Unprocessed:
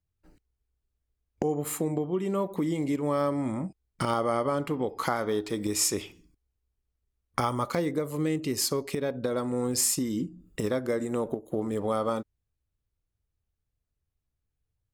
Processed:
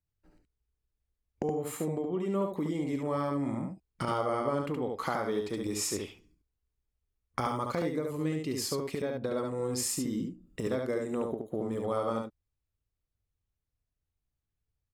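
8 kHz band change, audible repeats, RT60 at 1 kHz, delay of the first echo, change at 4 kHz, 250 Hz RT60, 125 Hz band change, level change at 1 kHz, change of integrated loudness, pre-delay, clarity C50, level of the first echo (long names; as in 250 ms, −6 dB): −7.0 dB, 1, no reverb audible, 71 ms, −5.5 dB, no reverb audible, −3.0 dB, −3.0 dB, −4.0 dB, no reverb audible, no reverb audible, −4.0 dB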